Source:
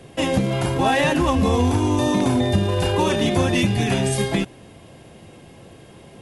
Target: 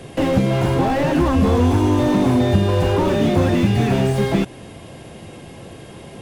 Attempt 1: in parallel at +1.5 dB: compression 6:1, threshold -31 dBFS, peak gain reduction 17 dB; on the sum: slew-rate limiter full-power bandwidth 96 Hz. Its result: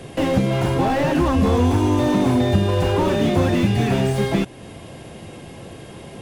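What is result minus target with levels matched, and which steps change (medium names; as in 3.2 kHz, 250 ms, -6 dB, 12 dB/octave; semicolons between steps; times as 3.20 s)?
compression: peak gain reduction +6.5 dB
change: compression 6:1, threshold -23 dBFS, peak gain reduction 10 dB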